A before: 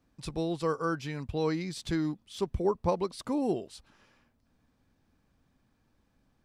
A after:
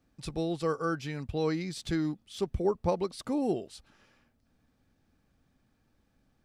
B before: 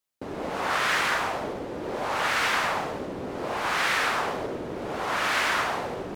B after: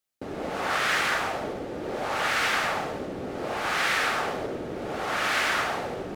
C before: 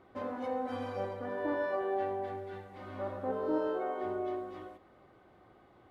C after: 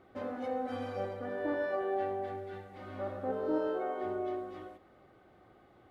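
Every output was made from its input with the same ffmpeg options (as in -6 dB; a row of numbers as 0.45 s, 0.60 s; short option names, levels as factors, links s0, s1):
-af "bandreject=f=1000:w=7.9"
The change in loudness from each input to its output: 0.0 LU, -0.5 LU, 0.0 LU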